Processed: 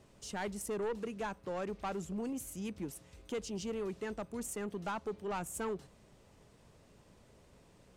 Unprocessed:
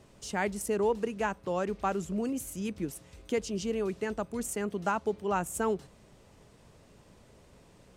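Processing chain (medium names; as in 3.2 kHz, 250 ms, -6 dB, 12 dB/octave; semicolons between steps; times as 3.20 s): saturation -27 dBFS, distortion -12 dB; trim -4.5 dB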